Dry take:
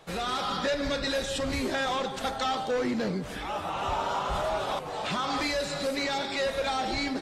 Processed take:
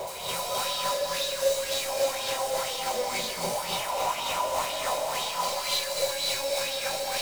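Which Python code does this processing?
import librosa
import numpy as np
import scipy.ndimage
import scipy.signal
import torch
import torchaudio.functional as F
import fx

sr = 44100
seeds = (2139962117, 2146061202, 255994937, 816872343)

p1 = librosa.effects.preemphasis(x, coef=0.97, zi=[0.0])
p2 = fx.notch(p1, sr, hz=3400.0, q=5.4)
p3 = p2 + 0.62 * np.pad(p2, (int(1.3 * sr / 1000.0), 0))[:len(p2)]
p4 = fx.cheby_harmonics(p3, sr, harmonics=(5, 6, 8), levels_db=(-6, -7, -6), full_scale_db=-24.5)
p5 = fx.schmitt(p4, sr, flips_db=-53.5)
p6 = p4 + (p5 * 10.0 ** (-5.0 / 20.0))
p7 = fx.fixed_phaser(p6, sr, hz=680.0, stages=4)
p8 = fx.small_body(p7, sr, hz=(380.0, 540.0, 990.0), ring_ms=40, db=15)
p9 = 10.0 ** (-36.0 / 20.0) * np.tanh(p8 / 10.0 ** (-36.0 / 20.0))
p10 = fx.tremolo_shape(p9, sr, shape='saw_down', hz=3.5, depth_pct=90)
p11 = p10 + fx.echo_single(p10, sr, ms=259, db=-3.5, dry=0)
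p12 = fx.rev_gated(p11, sr, seeds[0], gate_ms=320, shape='rising', drr_db=-6.5)
p13 = fx.bell_lfo(p12, sr, hz=2.0, low_hz=510.0, high_hz=3700.0, db=9)
y = p13 * 10.0 ** (1.5 / 20.0)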